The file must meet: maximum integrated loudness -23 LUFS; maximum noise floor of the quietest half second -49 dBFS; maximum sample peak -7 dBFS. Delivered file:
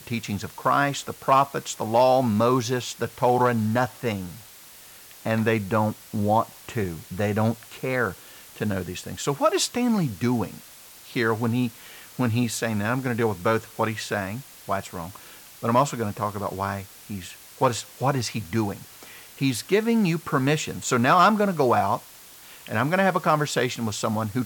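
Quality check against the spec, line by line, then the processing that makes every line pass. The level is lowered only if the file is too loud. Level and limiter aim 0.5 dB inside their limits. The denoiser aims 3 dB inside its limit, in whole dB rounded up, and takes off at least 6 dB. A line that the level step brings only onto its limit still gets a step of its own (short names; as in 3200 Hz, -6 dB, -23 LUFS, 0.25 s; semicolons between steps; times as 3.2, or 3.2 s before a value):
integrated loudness -24.5 LUFS: OK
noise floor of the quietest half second -47 dBFS: fail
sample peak -8.5 dBFS: OK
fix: denoiser 6 dB, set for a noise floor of -47 dBFS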